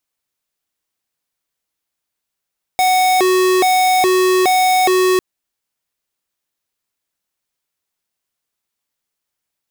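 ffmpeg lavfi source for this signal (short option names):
-f lavfi -i "aevalsrc='0.224*(2*lt(mod((556*t+186/1.2*(0.5-abs(mod(1.2*t,1)-0.5))),1),0.5)-1)':d=2.4:s=44100"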